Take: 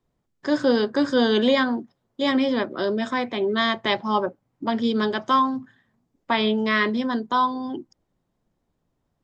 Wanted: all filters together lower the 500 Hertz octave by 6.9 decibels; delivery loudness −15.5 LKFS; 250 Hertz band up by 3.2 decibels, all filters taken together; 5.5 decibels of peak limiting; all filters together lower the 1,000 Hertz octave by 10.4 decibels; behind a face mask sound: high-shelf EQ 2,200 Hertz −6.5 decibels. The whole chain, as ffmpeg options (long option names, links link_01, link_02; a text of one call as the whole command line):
ffmpeg -i in.wav -af "equalizer=frequency=250:width_type=o:gain=5.5,equalizer=frequency=500:width_type=o:gain=-7.5,equalizer=frequency=1000:width_type=o:gain=-9,alimiter=limit=-14.5dB:level=0:latency=1,highshelf=frequency=2200:gain=-6.5,volume=9.5dB" out.wav